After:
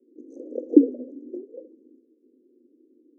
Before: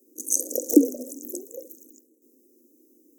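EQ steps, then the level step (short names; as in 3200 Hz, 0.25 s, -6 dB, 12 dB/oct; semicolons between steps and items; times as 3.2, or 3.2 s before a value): ladder low-pass 1900 Hz, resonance 35%; resonant low shelf 560 Hz +9 dB, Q 1.5; -2.0 dB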